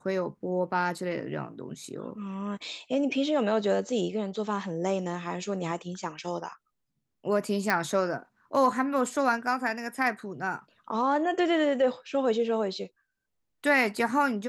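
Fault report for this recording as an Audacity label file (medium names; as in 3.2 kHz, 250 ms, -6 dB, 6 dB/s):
7.700000	7.700000	pop -12 dBFS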